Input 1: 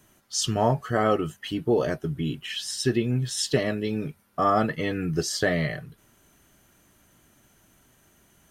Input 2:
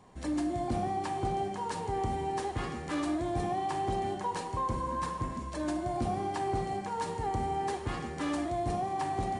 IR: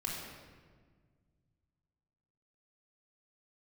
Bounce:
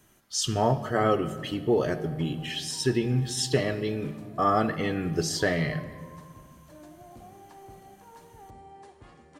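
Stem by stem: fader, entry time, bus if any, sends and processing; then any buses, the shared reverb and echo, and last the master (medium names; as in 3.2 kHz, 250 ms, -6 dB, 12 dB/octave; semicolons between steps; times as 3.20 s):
-3.0 dB, 0.00 s, send -11 dB, none
-17.0 dB, 1.15 s, no send, peaking EQ 580 Hz +5 dB 0.39 oct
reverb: on, RT60 1.6 s, pre-delay 3 ms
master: none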